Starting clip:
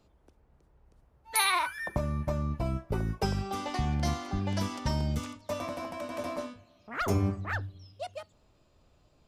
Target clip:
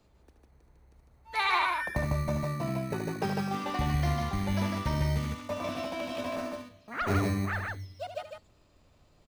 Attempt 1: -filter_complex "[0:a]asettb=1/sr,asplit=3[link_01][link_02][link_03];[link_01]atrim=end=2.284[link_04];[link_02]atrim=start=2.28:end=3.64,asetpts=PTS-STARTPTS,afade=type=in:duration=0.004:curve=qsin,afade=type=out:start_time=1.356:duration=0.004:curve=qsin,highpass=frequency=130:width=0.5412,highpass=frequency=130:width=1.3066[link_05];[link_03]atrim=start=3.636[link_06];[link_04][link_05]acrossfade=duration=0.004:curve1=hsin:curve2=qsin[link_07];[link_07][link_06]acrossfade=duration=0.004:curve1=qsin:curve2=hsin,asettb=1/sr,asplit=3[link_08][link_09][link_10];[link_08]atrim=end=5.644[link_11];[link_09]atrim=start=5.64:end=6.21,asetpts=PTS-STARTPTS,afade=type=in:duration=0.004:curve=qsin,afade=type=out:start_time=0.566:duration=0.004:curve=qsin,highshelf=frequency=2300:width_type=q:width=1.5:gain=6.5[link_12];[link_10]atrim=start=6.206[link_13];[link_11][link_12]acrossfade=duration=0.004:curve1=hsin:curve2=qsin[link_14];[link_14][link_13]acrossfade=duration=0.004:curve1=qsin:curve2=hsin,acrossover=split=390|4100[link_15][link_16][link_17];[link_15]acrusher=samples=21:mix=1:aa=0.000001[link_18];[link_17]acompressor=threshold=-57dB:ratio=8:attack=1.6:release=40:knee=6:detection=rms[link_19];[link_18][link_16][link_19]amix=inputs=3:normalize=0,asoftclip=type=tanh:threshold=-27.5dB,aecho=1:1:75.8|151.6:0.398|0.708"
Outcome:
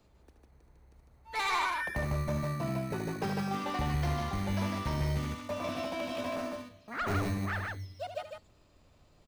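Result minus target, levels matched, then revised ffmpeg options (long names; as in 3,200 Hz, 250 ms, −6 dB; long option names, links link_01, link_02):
soft clipping: distortion +16 dB
-filter_complex "[0:a]asettb=1/sr,asplit=3[link_01][link_02][link_03];[link_01]atrim=end=2.284[link_04];[link_02]atrim=start=2.28:end=3.64,asetpts=PTS-STARTPTS,afade=type=in:duration=0.004:curve=qsin,afade=type=out:start_time=1.356:duration=0.004:curve=qsin,highpass=frequency=130:width=0.5412,highpass=frequency=130:width=1.3066[link_05];[link_03]atrim=start=3.636[link_06];[link_04][link_05]acrossfade=duration=0.004:curve1=hsin:curve2=qsin[link_07];[link_07][link_06]acrossfade=duration=0.004:curve1=qsin:curve2=hsin,asettb=1/sr,asplit=3[link_08][link_09][link_10];[link_08]atrim=end=5.644[link_11];[link_09]atrim=start=5.64:end=6.21,asetpts=PTS-STARTPTS,afade=type=in:duration=0.004:curve=qsin,afade=type=out:start_time=0.566:duration=0.004:curve=qsin,highshelf=frequency=2300:width_type=q:width=1.5:gain=6.5[link_12];[link_10]atrim=start=6.206[link_13];[link_11][link_12]acrossfade=duration=0.004:curve1=hsin:curve2=qsin[link_14];[link_14][link_13]acrossfade=duration=0.004:curve1=qsin:curve2=hsin,acrossover=split=390|4100[link_15][link_16][link_17];[link_15]acrusher=samples=21:mix=1:aa=0.000001[link_18];[link_17]acompressor=threshold=-57dB:ratio=8:attack=1.6:release=40:knee=6:detection=rms[link_19];[link_18][link_16][link_19]amix=inputs=3:normalize=0,asoftclip=type=tanh:threshold=-15.5dB,aecho=1:1:75.8|151.6:0.398|0.708"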